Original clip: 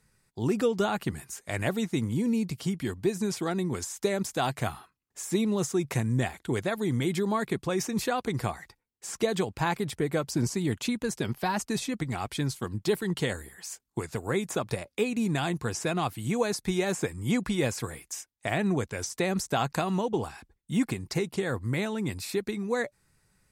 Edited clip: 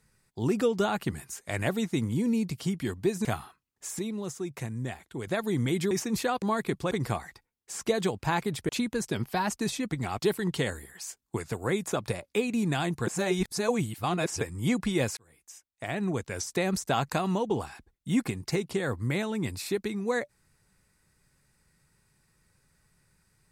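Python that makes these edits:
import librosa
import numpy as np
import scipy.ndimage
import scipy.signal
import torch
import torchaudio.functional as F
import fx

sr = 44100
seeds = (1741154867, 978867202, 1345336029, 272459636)

y = fx.edit(x, sr, fx.cut(start_s=3.25, length_s=1.34),
    fx.clip_gain(start_s=5.33, length_s=1.28, db=-7.5),
    fx.move(start_s=7.25, length_s=0.49, to_s=8.25),
    fx.cut(start_s=10.03, length_s=0.75),
    fx.cut(start_s=12.28, length_s=0.54),
    fx.reverse_span(start_s=15.7, length_s=1.34),
    fx.fade_in_span(start_s=17.8, length_s=1.29), tone=tone)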